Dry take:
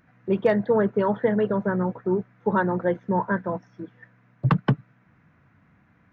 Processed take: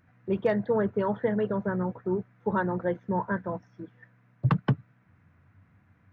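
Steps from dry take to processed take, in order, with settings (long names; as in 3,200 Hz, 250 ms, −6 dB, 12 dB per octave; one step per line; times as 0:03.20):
parametric band 94 Hz +13 dB 0.38 octaves
level −5 dB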